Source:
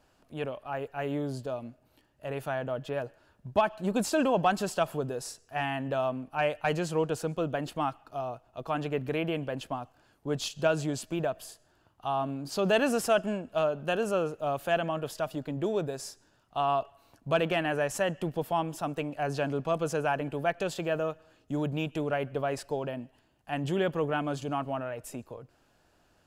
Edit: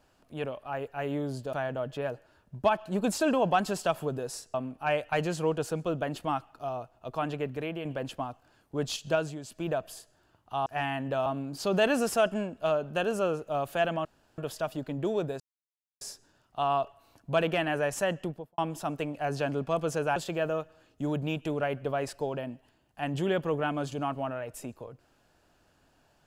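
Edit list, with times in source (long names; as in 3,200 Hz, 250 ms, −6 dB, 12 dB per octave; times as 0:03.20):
0:01.53–0:02.45: remove
0:05.46–0:06.06: move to 0:12.18
0:08.71–0:09.37: fade out, to −6.5 dB
0:10.61–0:11.24: duck −9.5 dB, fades 0.29 s
0:14.97: splice in room tone 0.33 s
0:15.99: splice in silence 0.61 s
0:18.12–0:18.56: fade out and dull
0:20.14–0:20.66: remove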